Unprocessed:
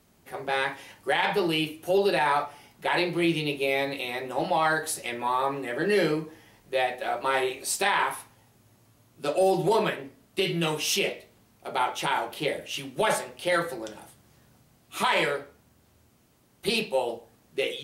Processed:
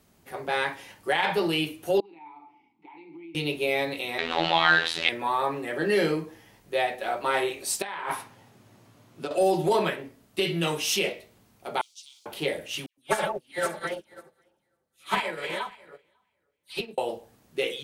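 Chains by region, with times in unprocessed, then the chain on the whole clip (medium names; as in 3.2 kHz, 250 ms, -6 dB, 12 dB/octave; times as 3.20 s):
2.00–3.35 s: compression 5:1, threshold -33 dBFS + vowel filter u + distance through air 90 m
4.18–5.09 s: jump at every zero crossing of -31 dBFS + robot voice 82.7 Hz + FFT filter 570 Hz 0 dB, 3.7 kHz +14 dB, 5.5 kHz -2 dB, 14 kHz -23 dB
7.82–9.31 s: high-pass 120 Hz + treble shelf 6.8 kHz -11.5 dB + compressor with a negative ratio -33 dBFS
11.81–12.26 s: send-on-delta sampling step -39.5 dBFS + inverse Chebyshev high-pass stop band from 1.8 kHz, stop band 50 dB + distance through air 97 m
12.86–16.98 s: backward echo that repeats 273 ms, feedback 42%, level -1 dB + phase dispersion lows, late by 116 ms, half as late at 1.6 kHz + upward expansion 2.5:1, over -39 dBFS
whole clip: none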